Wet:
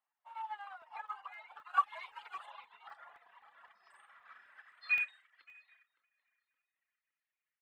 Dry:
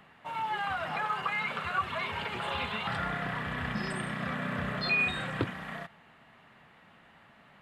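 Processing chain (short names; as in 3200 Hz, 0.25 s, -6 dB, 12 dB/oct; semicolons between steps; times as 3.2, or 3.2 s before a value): on a send: feedback echo 0.787 s, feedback 24%, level -15 dB; on the sum: high-pass sweep 860 Hz -> 2000 Hz, 3.47–5.21; tape echo 0.566 s, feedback 54%, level -4 dB, low-pass 1700 Hz; reverb removal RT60 1.5 s; 3.89–4.82 doubler 48 ms -5.5 dB; in parallel at -2 dB: pump 143 bpm, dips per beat 1, -8 dB, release 0.105 s; 1.69–2.46 on the sum: high shelf 2200 Hz +8 dB; crackling interface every 0.26 s, samples 64, zero, from 0.82; upward expander 2.5:1, over -36 dBFS; gain -8.5 dB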